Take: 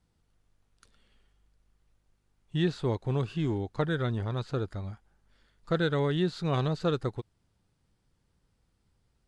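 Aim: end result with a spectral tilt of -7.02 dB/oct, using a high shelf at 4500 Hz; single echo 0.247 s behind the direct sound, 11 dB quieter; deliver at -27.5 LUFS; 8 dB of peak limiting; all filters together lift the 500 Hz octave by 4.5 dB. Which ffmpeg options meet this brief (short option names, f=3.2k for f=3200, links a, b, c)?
-af "equalizer=f=500:t=o:g=5.5,highshelf=f=4.5k:g=-7,alimiter=limit=-21dB:level=0:latency=1,aecho=1:1:247:0.282,volume=3.5dB"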